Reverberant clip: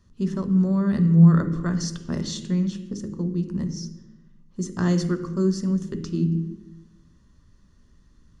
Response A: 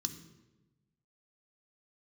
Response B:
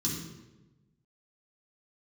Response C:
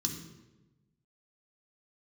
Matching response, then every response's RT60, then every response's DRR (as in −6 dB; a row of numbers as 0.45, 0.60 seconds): A; 1.1, 1.1, 1.1 seconds; 7.0, −5.5, 1.5 decibels